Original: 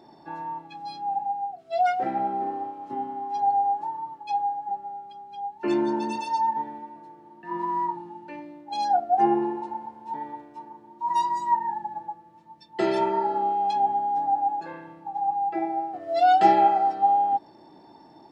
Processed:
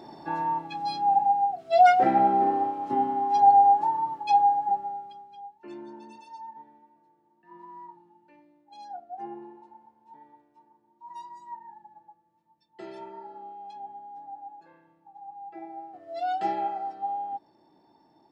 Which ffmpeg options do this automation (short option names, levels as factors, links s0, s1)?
-af "volume=4.47,afade=t=out:st=4.58:d=0.71:silence=0.237137,afade=t=out:st=5.29:d=0.35:silence=0.266073,afade=t=in:st=15.29:d=0.65:silence=0.446684"